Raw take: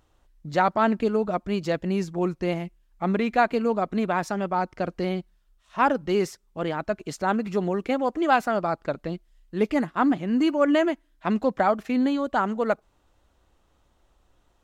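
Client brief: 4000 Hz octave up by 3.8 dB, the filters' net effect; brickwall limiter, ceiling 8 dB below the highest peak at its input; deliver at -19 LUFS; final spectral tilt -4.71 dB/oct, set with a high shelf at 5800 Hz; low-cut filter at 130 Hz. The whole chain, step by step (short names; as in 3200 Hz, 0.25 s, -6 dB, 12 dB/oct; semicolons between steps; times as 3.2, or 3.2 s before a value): HPF 130 Hz; bell 4000 Hz +3.5 dB; high shelf 5800 Hz +5 dB; gain +8 dB; limiter -7.5 dBFS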